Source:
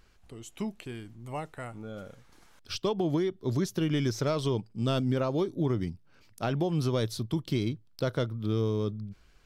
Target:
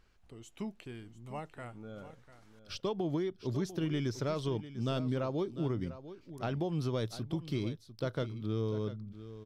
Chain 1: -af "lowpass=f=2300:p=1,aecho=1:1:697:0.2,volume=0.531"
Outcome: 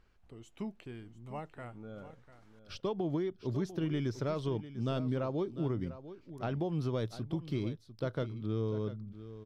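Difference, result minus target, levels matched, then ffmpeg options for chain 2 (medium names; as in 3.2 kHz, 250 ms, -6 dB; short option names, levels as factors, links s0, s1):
8 kHz band -6.0 dB
-af "lowpass=f=6100:p=1,aecho=1:1:697:0.2,volume=0.531"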